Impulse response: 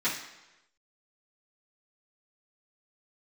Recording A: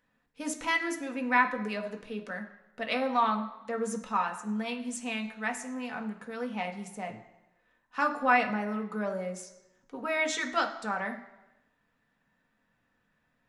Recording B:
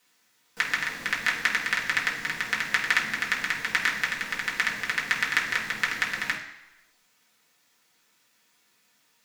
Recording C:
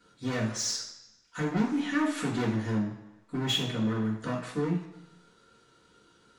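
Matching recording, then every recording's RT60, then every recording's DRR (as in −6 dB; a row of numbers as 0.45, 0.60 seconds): C; 1.0, 1.0, 1.0 seconds; 3.0, −4.5, −12.0 decibels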